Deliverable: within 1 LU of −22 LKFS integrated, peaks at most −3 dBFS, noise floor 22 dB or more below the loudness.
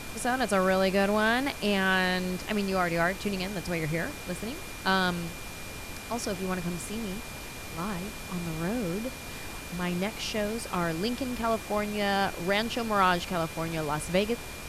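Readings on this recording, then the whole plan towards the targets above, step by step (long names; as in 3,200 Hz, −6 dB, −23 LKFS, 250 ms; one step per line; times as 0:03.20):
interfering tone 2,400 Hz; level of the tone −46 dBFS; background noise floor −41 dBFS; target noise floor −52 dBFS; integrated loudness −29.5 LKFS; sample peak −11.5 dBFS; target loudness −22.0 LKFS
→ notch filter 2,400 Hz, Q 30
noise reduction from a noise print 11 dB
level +7.5 dB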